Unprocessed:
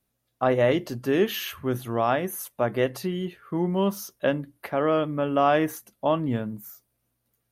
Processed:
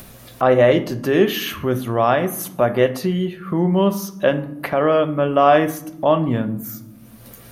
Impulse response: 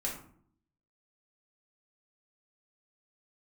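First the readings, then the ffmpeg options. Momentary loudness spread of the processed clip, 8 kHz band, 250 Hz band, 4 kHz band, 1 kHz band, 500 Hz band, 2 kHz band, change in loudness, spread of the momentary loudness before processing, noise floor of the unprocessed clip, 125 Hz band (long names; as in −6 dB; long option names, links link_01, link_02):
10 LU, +6.0 dB, +6.5 dB, +6.5 dB, +7.0 dB, +7.5 dB, +6.5 dB, +7.5 dB, 9 LU, −77 dBFS, +7.5 dB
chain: -filter_complex "[0:a]asplit=2[link_01][link_02];[1:a]atrim=start_sample=2205,asetrate=41454,aresample=44100,lowpass=5400[link_03];[link_02][link_03]afir=irnorm=-1:irlink=0,volume=-9.5dB[link_04];[link_01][link_04]amix=inputs=2:normalize=0,acompressor=mode=upward:threshold=-23dB:ratio=2.5,bandreject=frequency=415.4:width_type=h:width=4,bandreject=frequency=830.8:width_type=h:width=4,bandreject=frequency=1246.2:width_type=h:width=4,bandreject=frequency=1661.6:width_type=h:width=4,bandreject=frequency=2077:width_type=h:width=4,bandreject=frequency=2492.4:width_type=h:width=4,bandreject=frequency=2907.8:width_type=h:width=4,bandreject=frequency=3323.2:width_type=h:width=4,bandreject=frequency=3738.6:width_type=h:width=4,bandreject=frequency=4154:width_type=h:width=4,bandreject=frequency=4569.4:width_type=h:width=4,bandreject=frequency=4984.8:width_type=h:width=4,bandreject=frequency=5400.2:width_type=h:width=4,bandreject=frequency=5815.6:width_type=h:width=4,bandreject=frequency=6231:width_type=h:width=4,bandreject=frequency=6646.4:width_type=h:width=4,bandreject=frequency=7061.8:width_type=h:width=4,bandreject=frequency=7477.2:width_type=h:width=4,bandreject=frequency=7892.6:width_type=h:width=4,bandreject=frequency=8308:width_type=h:width=4,bandreject=frequency=8723.4:width_type=h:width=4,bandreject=frequency=9138.8:width_type=h:width=4,bandreject=frequency=9554.2:width_type=h:width=4,bandreject=frequency=9969.6:width_type=h:width=4,bandreject=frequency=10385:width_type=h:width=4,bandreject=frequency=10800.4:width_type=h:width=4,bandreject=frequency=11215.8:width_type=h:width=4,bandreject=frequency=11631.2:width_type=h:width=4,bandreject=frequency=12046.6:width_type=h:width=4,bandreject=frequency=12462:width_type=h:width=4,bandreject=frequency=12877.4:width_type=h:width=4,bandreject=frequency=13292.8:width_type=h:width=4,bandreject=frequency=13708.2:width_type=h:width=4,bandreject=frequency=14123.6:width_type=h:width=4,volume=4.5dB"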